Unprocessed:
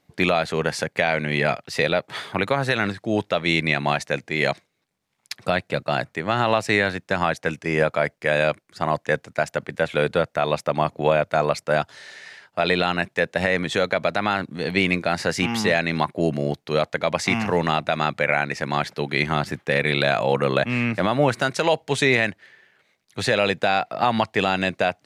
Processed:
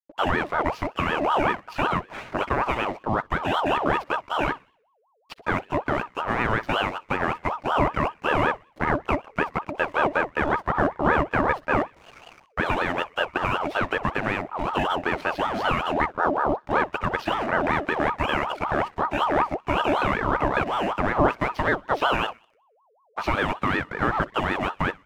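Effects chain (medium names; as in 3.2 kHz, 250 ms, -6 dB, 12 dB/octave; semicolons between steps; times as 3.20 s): knee-point frequency compression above 2 kHz 1.5:1; low-pass 3.8 kHz; peaking EQ 150 Hz +11 dB 0.26 oct; in parallel at +0.5 dB: compression, threshold -31 dBFS, peak gain reduction 18 dB; on the sum: peaking EQ 3 kHz -9 dB 0.55 oct; hysteresis with a dead band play -32.5 dBFS; thinning echo 62 ms, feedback 50%, high-pass 660 Hz, level -20 dB; ring modulator with a swept carrier 770 Hz, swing 45%, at 5.3 Hz; trim -2 dB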